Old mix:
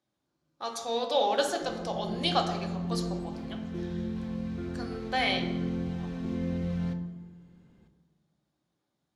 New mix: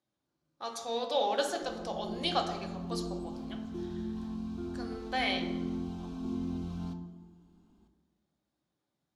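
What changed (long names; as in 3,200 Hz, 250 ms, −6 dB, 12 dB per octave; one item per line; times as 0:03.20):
speech −3.5 dB
background: add phaser with its sweep stopped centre 510 Hz, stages 6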